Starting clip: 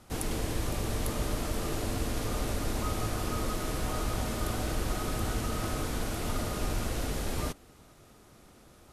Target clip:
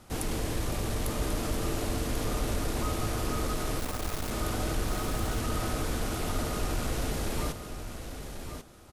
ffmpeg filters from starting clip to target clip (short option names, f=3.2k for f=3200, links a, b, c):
-filter_complex "[0:a]asplit=2[a][b];[b]asoftclip=type=tanh:threshold=-31dB,volume=-3dB[c];[a][c]amix=inputs=2:normalize=0,asettb=1/sr,asplit=3[d][e][f];[d]atrim=end=3.794[g];[e]atrim=start=3.79:end=4.31,asetpts=PTS-STARTPTS,afade=t=in:d=0.004:c=qsin,afade=t=out:st=0.516:d=0.004:c=qsin,acrusher=bits=3:dc=4:mix=0:aa=0.000001[h];[f]atrim=start=4.306[i];[g][h]acrossfade=d=0.004:c1=hsin:c2=qsin[j];[j][i]acrossfade=d=0.004:c1=qsin:c2=hsin,aecho=1:1:1090:0.376,volume=-2.5dB"